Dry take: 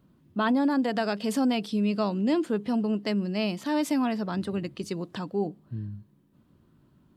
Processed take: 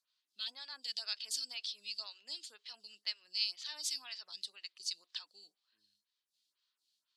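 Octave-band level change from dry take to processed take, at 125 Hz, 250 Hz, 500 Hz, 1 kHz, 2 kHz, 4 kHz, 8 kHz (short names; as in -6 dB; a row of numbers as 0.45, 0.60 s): under -40 dB, under -40 dB, -37.0 dB, -27.5 dB, -14.0 dB, +2.0 dB, +1.0 dB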